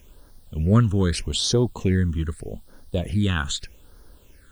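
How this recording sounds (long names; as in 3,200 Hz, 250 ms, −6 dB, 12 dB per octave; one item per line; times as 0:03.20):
a quantiser's noise floor 10 bits, dither triangular
phaser sweep stages 8, 0.81 Hz, lowest notch 630–2,500 Hz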